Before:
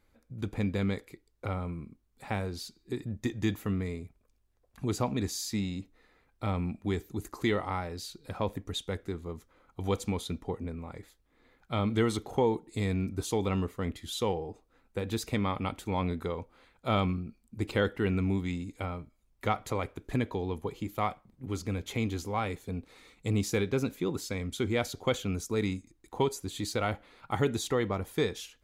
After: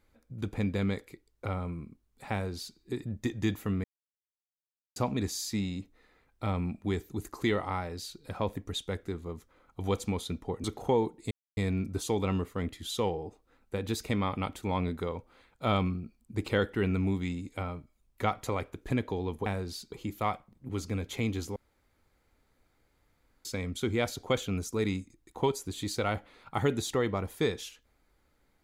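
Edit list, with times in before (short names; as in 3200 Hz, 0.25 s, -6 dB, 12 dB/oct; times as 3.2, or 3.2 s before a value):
2.32–2.78 copy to 20.69
3.84–4.96 mute
10.64–12.13 cut
12.8 insert silence 0.26 s
22.33–24.22 room tone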